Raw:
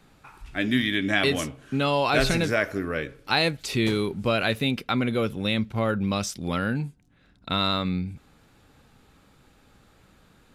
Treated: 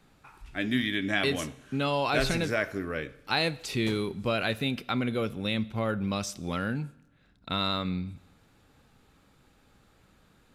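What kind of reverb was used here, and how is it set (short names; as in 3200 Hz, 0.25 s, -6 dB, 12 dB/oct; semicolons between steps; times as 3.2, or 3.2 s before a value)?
Schroeder reverb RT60 0.95 s, combs from 25 ms, DRR 19 dB; gain -4.5 dB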